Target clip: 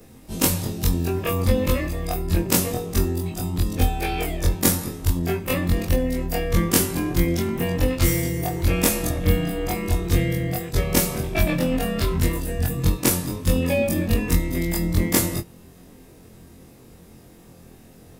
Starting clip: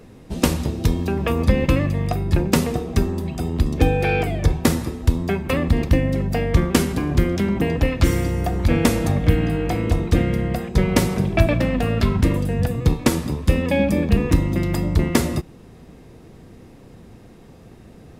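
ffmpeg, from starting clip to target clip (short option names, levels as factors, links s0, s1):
-af "afftfilt=real='re':imag='-im':win_size=2048:overlap=0.75,aemphasis=mode=production:type=50fm,atempo=1,volume=1.19"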